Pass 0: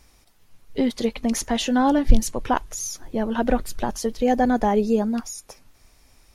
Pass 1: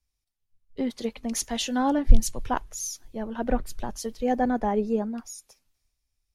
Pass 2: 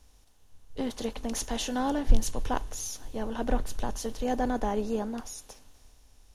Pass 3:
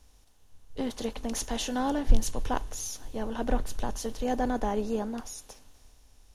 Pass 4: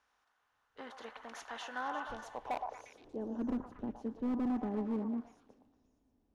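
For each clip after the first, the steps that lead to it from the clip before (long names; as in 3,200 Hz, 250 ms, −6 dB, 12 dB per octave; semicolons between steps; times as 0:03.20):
multiband upward and downward expander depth 70%; level −6 dB
compressor on every frequency bin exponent 0.6; level −6.5 dB
no processing that can be heard
band-pass filter sweep 1,400 Hz → 260 Hz, 0:01.87–0:03.42; gain into a clipping stage and back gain 31.5 dB; echo through a band-pass that steps 117 ms, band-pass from 910 Hz, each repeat 0.7 octaves, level −2.5 dB; level +1 dB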